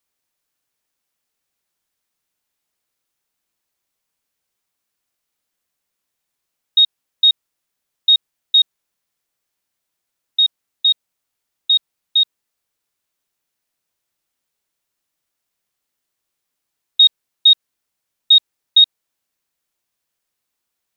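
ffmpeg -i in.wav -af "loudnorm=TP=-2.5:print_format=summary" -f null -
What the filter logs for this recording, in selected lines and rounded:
Input Integrated:    -13.7 LUFS
Input True Peak:      -4.4 dBTP
Input LRA:             8.1 LU
Input Threshold:     -23.9 LUFS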